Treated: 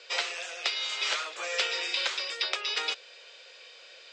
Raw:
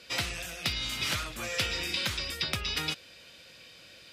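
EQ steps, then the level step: Chebyshev band-pass 420–7500 Hz, order 4; treble shelf 5.3 kHz -4.5 dB; +3.5 dB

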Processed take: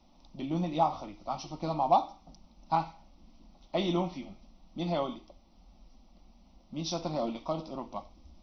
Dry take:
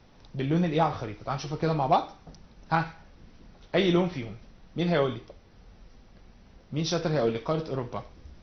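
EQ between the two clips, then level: dynamic bell 990 Hz, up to +4 dB, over -38 dBFS, Q 1.3; static phaser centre 440 Hz, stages 6; -3.0 dB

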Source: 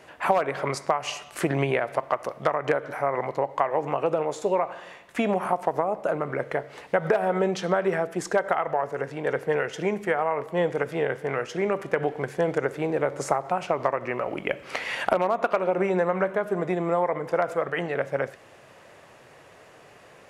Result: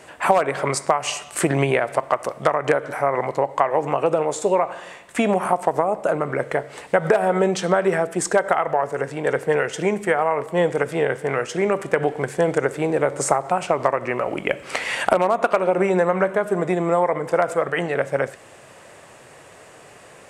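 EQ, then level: peaking EQ 8.3 kHz +11.5 dB 0.47 oct; +5.0 dB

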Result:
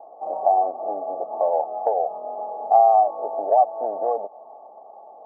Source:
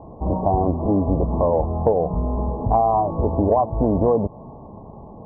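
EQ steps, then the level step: ladder high-pass 620 Hz, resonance 50%; Butterworth band-stop 1 kHz, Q 3.8; distance through air 270 m; +7.5 dB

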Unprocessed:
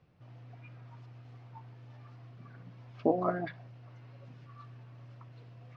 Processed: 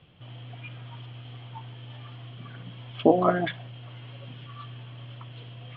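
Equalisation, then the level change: resonant low-pass 3.2 kHz, resonance Q 13; distance through air 120 m; +8.5 dB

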